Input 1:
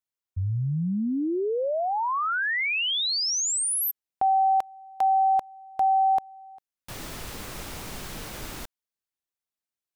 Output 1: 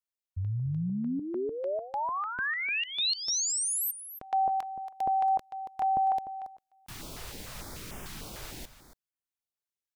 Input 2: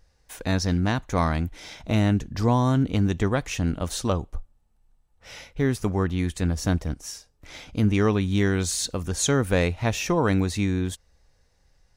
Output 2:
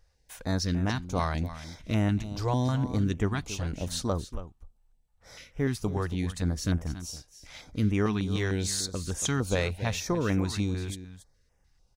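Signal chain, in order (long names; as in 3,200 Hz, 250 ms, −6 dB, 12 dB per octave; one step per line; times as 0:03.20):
dynamic equaliser 4,400 Hz, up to +4 dB, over −46 dBFS, Q 1.9
single-tap delay 279 ms −13 dB
notch on a step sequencer 6.7 Hz 230–4,200 Hz
level −4.5 dB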